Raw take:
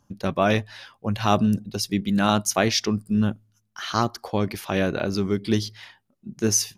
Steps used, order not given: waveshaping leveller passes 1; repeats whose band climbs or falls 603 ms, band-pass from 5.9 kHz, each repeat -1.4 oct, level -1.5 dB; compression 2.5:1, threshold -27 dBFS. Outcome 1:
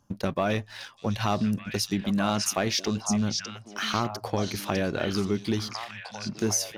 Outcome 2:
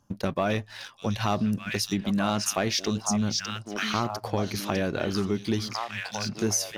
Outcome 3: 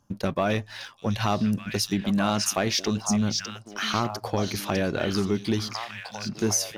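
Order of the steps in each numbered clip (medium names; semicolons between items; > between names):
waveshaping leveller > compression > repeats whose band climbs or falls; repeats whose band climbs or falls > waveshaping leveller > compression; compression > repeats whose band climbs or falls > waveshaping leveller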